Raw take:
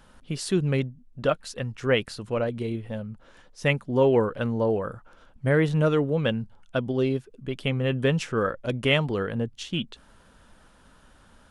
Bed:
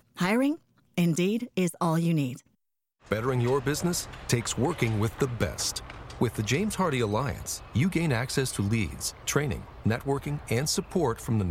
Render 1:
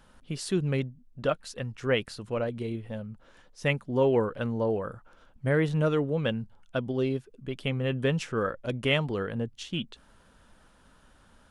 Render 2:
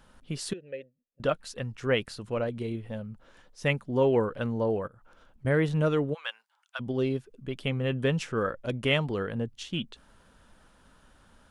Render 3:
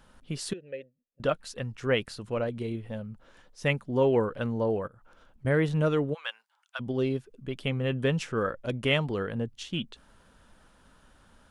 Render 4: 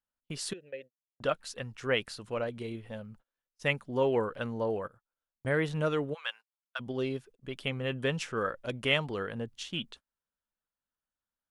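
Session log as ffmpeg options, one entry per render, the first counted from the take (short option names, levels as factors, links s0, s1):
-af "volume=0.668"
-filter_complex "[0:a]asettb=1/sr,asplit=3[s0][s1][s2];[s0]atrim=end=0.534[s3];[s1]atrim=start=0.53:end=1.2,asetpts=PTS-STARTPTS,afade=t=in:d=0.004:c=qsin,afade=t=out:st=0.666:d=0.004:c=qsin,asplit=3[s4][s5][s6];[s4]bandpass=f=530:t=q:w=8,volume=1[s7];[s5]bandpass=f=1840:t=q:w=8,volume=0.501[s8];[s6]bandpass=f=2480:t=q:w=8,volume=0.355[s9];[s7][s8][s9]amix=inputs=3:normalize=0[s10];[s2]atrim=start=1.196[s11];[s3][s10]acrossfade=d=0.004:c1=hsin:c2=qsin[s12];[s12][s11]acrossfade=d=0.004:c1=qsin:c2=hsin,asettb=1/sr,asplit=3[s13][s14][s15];[s13]atrim=end=4.874[s16];[s14]atrim=start=4.87:end=5.45,asetpts=PTS-STARTPTS,afade=t=in:d=0.004:c=qsin,afade=t=out:st=0.576:d=0.004:c=qsin,acompressor=threshold=0.00282:ratio=8:attack=3.2:release=140:knee=1:detection=peak[s17];[s15]atrim=start=5.446[s18];[s16][s17]acrossfade=d=0.004:c1=hsin:c2=qsin[s19];[s19][s18]acrossfade=d=0.004:c1=qsin:c2=hsin,asplit=3[s20][s21][s22];[s20]afade=t=out:st=6.13:d=0.02[s23];[s21]highpass=f=940:w=0.5412,highpass=f=940:w=1.3066,afade=t=in:st=6.13:d=0.02,afade=t=out:st=6.79:d=0.02[s24];[s22]afade=t=in:st=6.79:d=0.02[s25];[s23][s24][s25]amix=inputs=3:normalize=0"
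-af anull
-af "agate=range=0.0178:threshold=0.00501:ratio=16:detection=peak,lowshelf=f=470:g=-7.5"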